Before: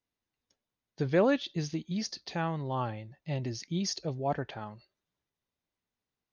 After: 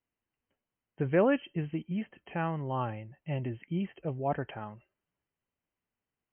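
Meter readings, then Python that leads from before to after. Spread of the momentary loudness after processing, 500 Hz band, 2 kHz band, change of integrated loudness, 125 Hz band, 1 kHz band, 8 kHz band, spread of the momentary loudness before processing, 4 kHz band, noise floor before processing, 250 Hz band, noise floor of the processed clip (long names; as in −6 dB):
13 LU, 0.0 dB, 0.0 dB, −0.5 dB, 0.0 dB, 0.0 dB, can't be measured, 11 LU, −11.5 dB, below −85 dBFS, 0.0 dB, below −85 dBFS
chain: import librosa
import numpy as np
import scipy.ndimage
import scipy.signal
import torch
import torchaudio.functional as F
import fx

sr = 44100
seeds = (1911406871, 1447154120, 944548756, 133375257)

y = fx.brickwall_lowpass(x, sr, high_hz=3200.0)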